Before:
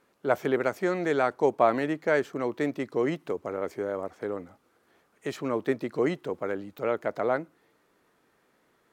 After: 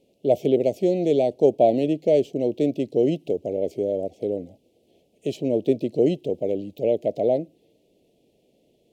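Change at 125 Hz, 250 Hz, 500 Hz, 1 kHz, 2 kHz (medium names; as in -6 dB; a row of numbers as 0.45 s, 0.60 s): +7.0 dB, +6.5 dB, +6.5 dB, -2.0 dB, under -10 dB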